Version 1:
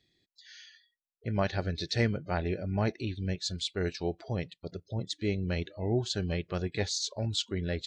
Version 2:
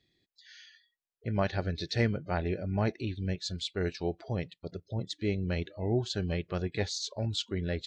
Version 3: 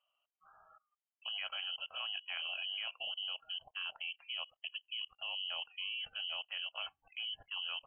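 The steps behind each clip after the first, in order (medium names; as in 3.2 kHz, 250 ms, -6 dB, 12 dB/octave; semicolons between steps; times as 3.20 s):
treble shelf 6.3 kHz -8 dB
level held to a coarse grid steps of 21 dB; frequency inversion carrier 3.1 kHz; resonant low shelf 490 Hz -11.5 dB, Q 3; trim +1 dB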